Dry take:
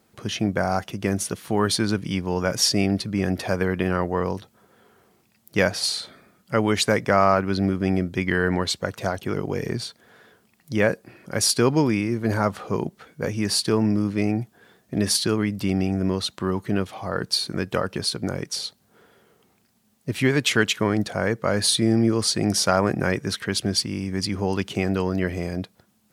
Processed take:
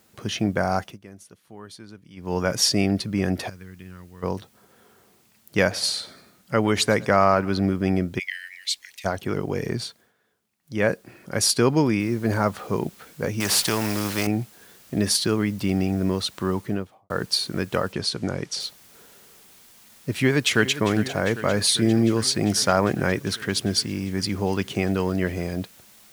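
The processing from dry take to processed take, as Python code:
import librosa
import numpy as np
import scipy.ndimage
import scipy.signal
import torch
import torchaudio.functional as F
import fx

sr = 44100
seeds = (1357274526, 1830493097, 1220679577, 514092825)

y = fx.tone_stack(x, sr, knobs='6-0-2', at=(3.48, 4.22), fade=0.02)
y = fx.echo_feedback(y, sr, ms=111, feedback_pct=46, wet_db=-23.5, at=(5.6, 7.61))
y = fx.steep_highpass(y, sr, hz=1900.0, slope=72, at=(8.18, 9.04), fade=0.02)
y = fx.noise_floor_step(y, sr, seeds[0], at_s=12.0, before_db=-63, after_db=-52, tilt_db=0.0)
y = fx.spectral_comp(y, sr, ratio=2.0, at=(13.4, 14.27))
y = fx.studio_fade_out(y, sr, start_s=16.54, length_s=0.56)
y = fx.lowpass(y, sr, hz=7800.0, slope=12, at=(17.92, 18.59), fade=0.02)
y = fx.echo_throw(y, sr, start_s=20.12, length_s=0.7, ms=400, feedback_pct=80, wet_db=-14.0)
y = fx.edit(y, sr, fx.fade_down_up(start_s=0.8, length_s=1.55, db=-20.5, fade_s=0.19),
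    fx.fade_down_up(start_s=9.86, length_s=1.03, db=-17.5, fade_s=0.27), tone=tone)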